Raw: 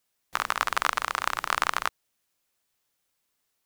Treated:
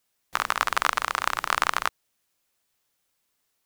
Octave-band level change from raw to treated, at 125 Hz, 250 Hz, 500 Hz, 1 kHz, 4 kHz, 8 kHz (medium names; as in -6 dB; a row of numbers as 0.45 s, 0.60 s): +2.0 dB, +2.0 dB, +2.0 dB, +2.0 dB, +2.0 dB, +2.0 dB